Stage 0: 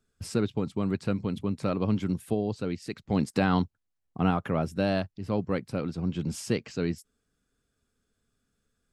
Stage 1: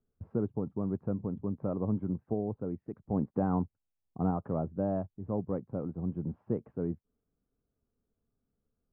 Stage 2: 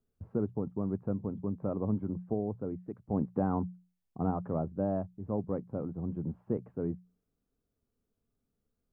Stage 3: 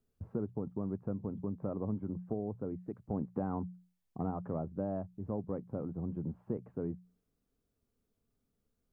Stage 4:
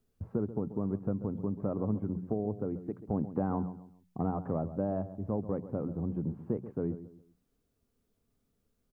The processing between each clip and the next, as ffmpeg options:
-af "lowpass=f=1000:w=0.5412,lowpass=f=1000:w=1.3066,volume=0.596"
-af "bandreject=f=60:t=h:w=6,bandreject=f=120:t=h:w=6,bandreject=f=180:t=h:w=6"
-af "acompressor=threshold=0.0141:ratio=2,volume=1.12"
-filter_complex "[0:a]asplit=2[s0][s1];[s1]adelay=135,lowpass=f=1500:p=1,volume=0.224,asplit=2[s2][s3];[s3]adelay=135,lowpass=f=1500:p=1,volume=0.34,asplit=2[s4][s5];[s5]adelay=135,lowpass=f=1500:p=1,volume=0.34[s6];[s0][s2][s4][s6]amix=inputs=4:normalize=0,volume=1.58"

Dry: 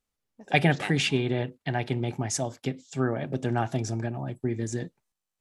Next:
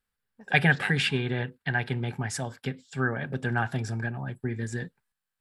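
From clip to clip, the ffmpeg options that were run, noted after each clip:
-af "equalizer=f=315:t=o:w=0.33:g=-12,equalizer=f=630:t=o:w=0.33:g=-8,equalizer=f=1600:t=o:w=0.33:g=11,equalizer=f=6300:t=o:w=0.33:g=-11"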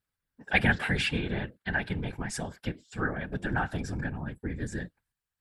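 -af "afftfilt=real='hypot(re,im)*cos(2*PI*random(0))':imag='hypot(re,im)*sin(2*PI*random(1))':win_size=512:overlap=0.75,volume=1.5"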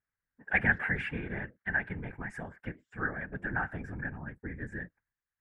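-af "highshelf=f=2800:t=q:w=3:g=-14,volume=0.473"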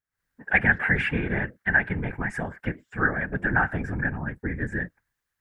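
-af "dynaudnorm=f=100:g=3:m=5.01,volume=0.668"

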